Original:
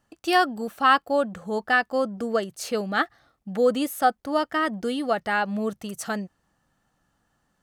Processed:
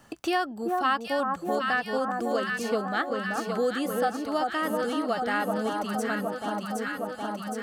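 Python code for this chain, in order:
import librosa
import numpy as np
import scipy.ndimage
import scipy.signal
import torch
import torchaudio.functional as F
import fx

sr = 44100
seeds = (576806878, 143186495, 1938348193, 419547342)

y = fx.echo_alternate(x, sr, ms=383, hz=1200.0, feedback_pct=77, wet_db=-3)
y = fx.band_squash(y, sr, depth_pct=70)
y = F.gain(torch.from_numpy(y), -5.5).numpy()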